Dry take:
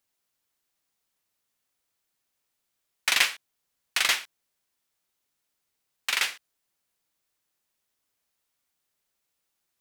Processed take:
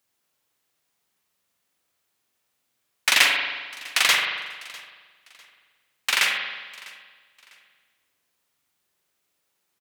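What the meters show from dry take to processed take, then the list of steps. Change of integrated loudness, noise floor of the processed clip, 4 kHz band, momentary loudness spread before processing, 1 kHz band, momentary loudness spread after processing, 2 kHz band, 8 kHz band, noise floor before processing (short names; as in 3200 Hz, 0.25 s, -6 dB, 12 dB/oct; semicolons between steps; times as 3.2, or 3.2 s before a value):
+4.5 dB, -76 dBFS, +5.5 dB, 10 LU, +6.5 dB, 20 LU, +6.5 dB, +4.0 dB, -80 dBFS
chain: HPF 68 Hz; on a send: feedback echo 0.65 s, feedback 30%, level -22 dB; on the sum: spring tank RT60 1.3 s, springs 44 ms, chirp 30 ms, DRR 1 dB; gain +4 dB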